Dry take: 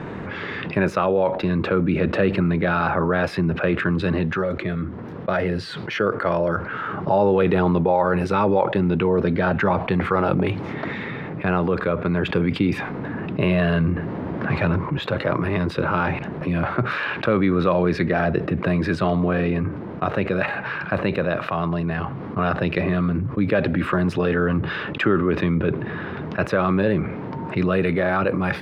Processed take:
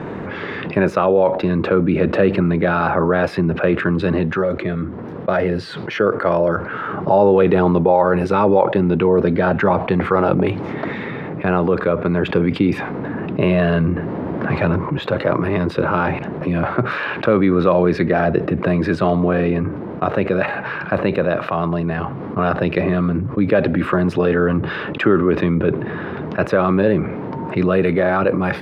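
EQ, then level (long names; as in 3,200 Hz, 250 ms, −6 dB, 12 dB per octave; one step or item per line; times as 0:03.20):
parametric band 460 Hz +5.5 dB 2.9 octaves
0.0 dB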